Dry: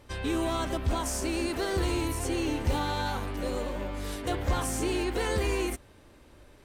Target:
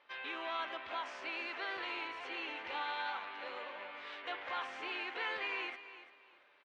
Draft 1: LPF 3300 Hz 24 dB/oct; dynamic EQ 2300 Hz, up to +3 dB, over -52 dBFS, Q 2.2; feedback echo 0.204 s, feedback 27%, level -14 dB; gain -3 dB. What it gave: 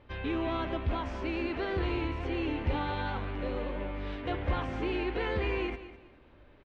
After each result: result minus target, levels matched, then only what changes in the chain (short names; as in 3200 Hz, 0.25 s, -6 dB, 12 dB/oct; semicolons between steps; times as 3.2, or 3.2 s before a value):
echo 0.137 s early; 1000 Hz band -3.5 dB
change: feedback echo 0.341 s, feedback 27%, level -14 dB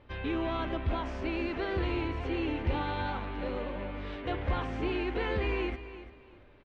1000 Hz band -3.0 dB
add after dynamic EQ: HPF 1000 Hz 12 dB/oct